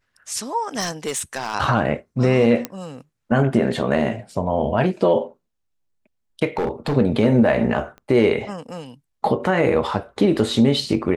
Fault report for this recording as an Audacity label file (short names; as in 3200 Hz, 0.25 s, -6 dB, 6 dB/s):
0.790000	1.550000	clipped -19.5 dBFS
2.650000	2.650000	pop -9 dBFS
6.570000	6.950000	clipped -17.5 dBFS
7.980000	7.980000	pop -28 dBFS